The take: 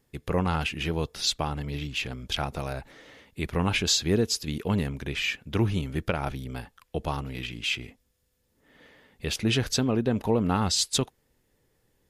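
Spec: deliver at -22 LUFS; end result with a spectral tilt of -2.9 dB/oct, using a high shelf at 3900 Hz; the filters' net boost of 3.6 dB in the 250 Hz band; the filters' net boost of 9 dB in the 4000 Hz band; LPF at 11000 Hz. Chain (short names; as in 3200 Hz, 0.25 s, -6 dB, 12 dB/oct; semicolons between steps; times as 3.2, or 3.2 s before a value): LPF 11000 Hz; bell 250 Hz +4.5 dB; high shelf 3900 Hz +9 dB; bell 4000 Hz +5.5 dB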